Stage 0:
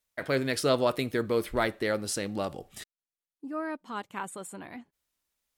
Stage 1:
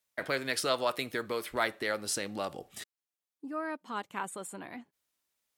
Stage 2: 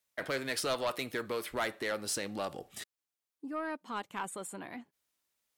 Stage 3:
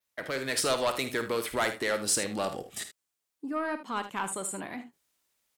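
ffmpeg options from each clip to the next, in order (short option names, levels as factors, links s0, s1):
-filter_complex "[0:a]highpass=f=160:p=1,acrossover=split=660|1800[s0][s1][s2];[s0]acompressor=threshold=0.0141:ratio=6[s3];[s3][s1][s2]amix=inputs=3:normalize=0"
-af "asoftclip=type=tanh:threshold=0.0501"
-af "aecho=1:1:52|77:0.237|0.224,dynaudnorm=f=310:g=3:m=1.78,adynamicequalizer=threshold=0.00355:dfrequency=8100:dqfactor=2:tfrequency=8100:tqfactor=2:attack=5:release=100:ratio=0.375:range=3:mode=boostabove:tftype=bell"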